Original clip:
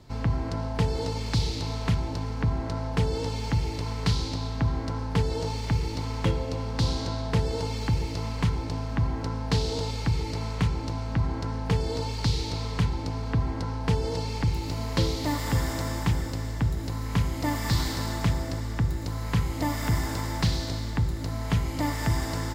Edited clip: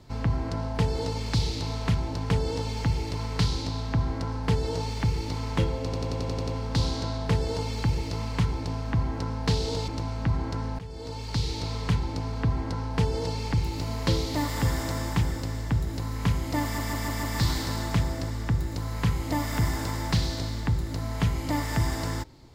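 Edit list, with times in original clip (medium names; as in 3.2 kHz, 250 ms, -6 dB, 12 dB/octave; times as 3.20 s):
2.30–2.97 s: delete
6.51 s: stutter 0.09 s, 8 plays
9.92–10.78 s: delete
11.69–12.83 s: fade in equal-power, from -19.5 dB
17.53 s: stutter 0.15 s, 5 plays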